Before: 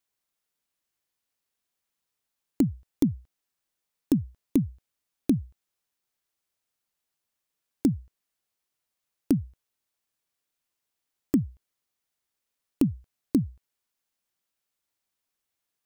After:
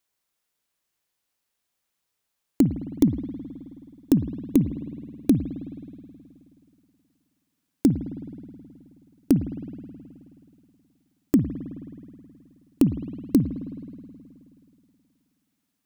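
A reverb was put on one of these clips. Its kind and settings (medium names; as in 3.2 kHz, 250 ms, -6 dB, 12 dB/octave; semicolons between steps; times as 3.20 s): spring tank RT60 2.6 s, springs 53 ms, chirp 65 ms, DRR 9.5 dB; trim +4 dB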